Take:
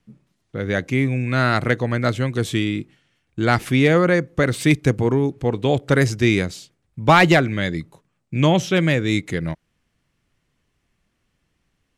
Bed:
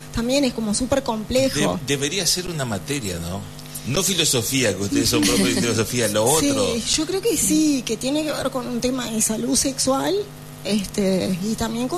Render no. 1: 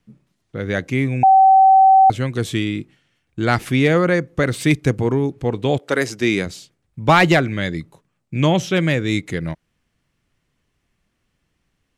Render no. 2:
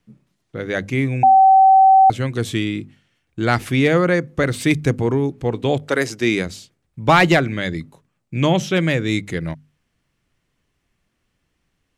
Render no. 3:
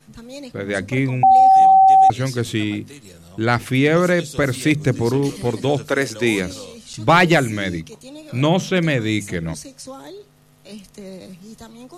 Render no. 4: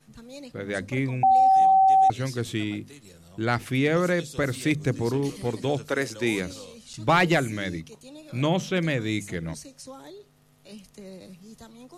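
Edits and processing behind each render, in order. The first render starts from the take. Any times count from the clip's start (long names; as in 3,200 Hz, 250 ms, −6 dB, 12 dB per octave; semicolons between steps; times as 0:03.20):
0:01.23–0:02.10: beep over 768 Hz −7 dBFS; 0:05.77–0:06.45: high-pass filter 430 Hz → 140 Hz
mains-hum notches 50/100/150/200/250 Hz
mix in bed −16 dB
level −7 dB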